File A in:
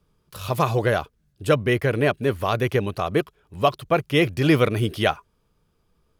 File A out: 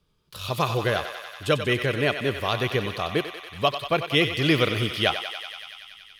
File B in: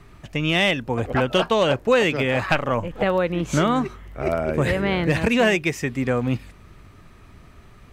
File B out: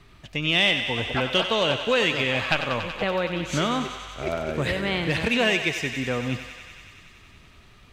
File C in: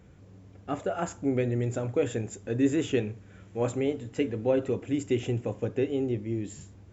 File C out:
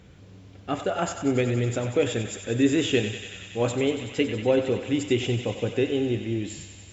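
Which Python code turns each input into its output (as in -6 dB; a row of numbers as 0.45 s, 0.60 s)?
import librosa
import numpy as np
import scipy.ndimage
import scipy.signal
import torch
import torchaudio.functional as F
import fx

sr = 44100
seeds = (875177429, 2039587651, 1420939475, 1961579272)

p1 = fx.peak_eq(x, sr, hz=3600.0, db=9.0, octaves=1.3)
p2 = p1 + fx.echo_thinned(p1, sr, ms=94, feedback_pct=84, hz=560.0, wet_db=-9.0, dry=0)
y = p2 * 10.0 ** (-26 / 20.0) / np.sqrt(np.mean(np.square(p2)))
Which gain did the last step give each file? -4.5 dB, -5.5 dB, +3.0 dB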